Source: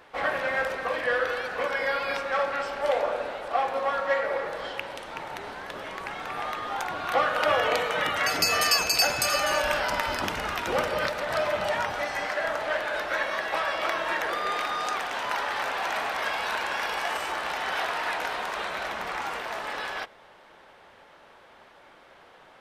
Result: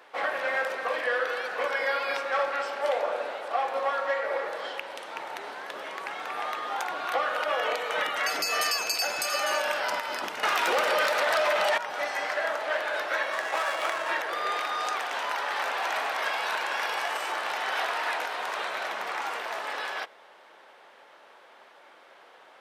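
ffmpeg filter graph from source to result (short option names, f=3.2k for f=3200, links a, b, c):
-filter_complex "[0:a]asettb=1/sr,asplit=3[a][b][c];[a]atrim=end=10.434[d];[b]atrim=start=10.43:end=11.78,asetpts=PTS-STARTPTS,afade=t=in:d=0.004:c=qsin,afade=t=out:st=1.346:d=0.004:c=qsin,lowshelf=f=380:g=-8.5,acontrast=62,aeval=exprs='0.447*sin(PI/2*2.24*val(0)/0.447)':c=same[e];[c]atrim=start=11.776[f];[d][e]acrossfade=d=0.004:c1=hsin:c2=qsin[g];[g][f]acrossfade=d=0.004:c1=qsin:c2=hsin,asettb=1/sr,asplit=3[h][i][j];[h]atrim=end=13.324[k];[i]atrim=start=13.32:end=14.09,asetpts=PTS-STARTPTS,afade=t=in:d=0.004:c=qsin,afade=t=out:st=0.766:d=0.004:c=qsin,highpass=46,asubboost=boost=12:cutoff=130,adynamicsmooth=sensitivity=8:basefreq=960[l];[j]atrim=start=14.086[m];[k][l]acrossfade=d=0.004:c1=hsin:c2=qsin[n];[n][m]acrossfade=d=0.004:c1=qsin:c2=hsin,highpass=360,alimiter=limit=-16.5dB:level=0:latency=1:release=242"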